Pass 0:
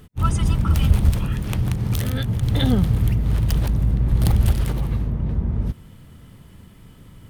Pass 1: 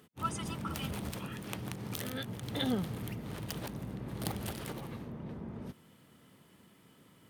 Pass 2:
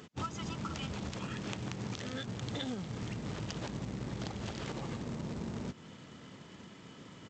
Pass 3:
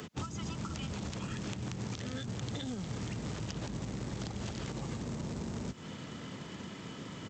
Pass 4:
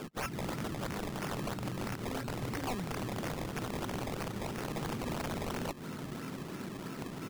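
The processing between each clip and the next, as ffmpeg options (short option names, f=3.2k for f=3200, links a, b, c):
-af "highpass=240,volume=-8.5dB"
-af "acompressor=threshold=-45dB:ratio=12,aresample=16000,acrusher=bits=3:mode=log:mix=0:aa=0.000001,aresample=44100,volume=9.5dB"
-filter_complex "[0:a]acrossover=split=94|290|5900[a][b][c][d];[a]acompressor=threshold=-53dB:ratio=4[e];[b]acompressor=threshold=-49dB:ratio=4[f];[c]acompressor=threshold=-53dB:ratio=4[g];[d]acompressor=threshold=-59dB:ratio=4[h];[e][f][g][h]amix=inputs=4:normalize=0,volume=8dB"
-af "highpass=100,equalizer=f=150:t=q:w=4:g=4,equalizer=f=260:t=q:w=4:g=4,equalizer=f=370:t=q:w=4:g=7,equalizer=f=1.4k:t=q:w=4:g=9,lowpass=f=4.7k:w=0.5412,lowpass=f=4.7k:w=1.3066,acrusher=samples=21:mix=1:aa=0.000001:lfo=1:lforange=21:lforate=3,aeval=exprs='(mod(33.5*val(0)+1,2)-1)/33.5':c=same"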